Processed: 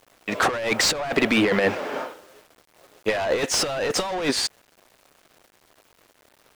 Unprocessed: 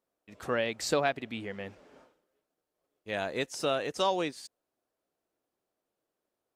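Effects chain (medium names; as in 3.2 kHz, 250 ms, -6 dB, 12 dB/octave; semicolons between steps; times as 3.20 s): overdrive pedal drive 31 dB, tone 2.3 kHz, clips at -13 dBFS; bit crusher 10-bit; compressor with a negative ratio -25 dBFS, ratio -0.5; trim +4 dB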